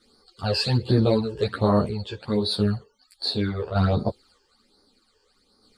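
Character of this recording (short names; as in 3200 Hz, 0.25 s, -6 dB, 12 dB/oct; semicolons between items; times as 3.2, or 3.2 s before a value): phasing stages 12, 1.3 Hz, lowest notch 210–2800 Hz; random-step tremolo 1.6 Hz; a shimmering, thickened sound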